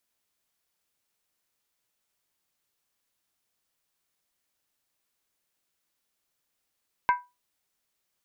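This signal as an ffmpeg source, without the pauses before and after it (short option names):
-f lavfi -i "aevalsrc='0.168*pow(10,-3*t/0.24)*sin(2*PI*983*t)+0.075*pow(10,-3*t/0.19)*sin(2*PI*1566.9*t)+0.0335*pow(10,-3*t/0.164)*sin(2*PI*2099.7*t)+0.015*pow(10,-3*t/0.158)*sin(2*PI*2257*t)+0.00668*pow(10,-3*t/0.147)*sin(2*PI*2607.9*t)':d=0.63:s=44100"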